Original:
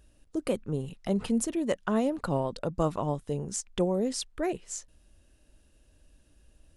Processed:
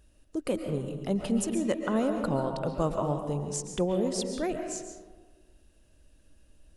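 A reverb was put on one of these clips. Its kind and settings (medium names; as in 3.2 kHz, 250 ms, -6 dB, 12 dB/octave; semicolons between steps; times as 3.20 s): algorithmic reverb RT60 1.4 s, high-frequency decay 0.4×, pre-delay 95 ms, DRR 5 dB; trim -1 dB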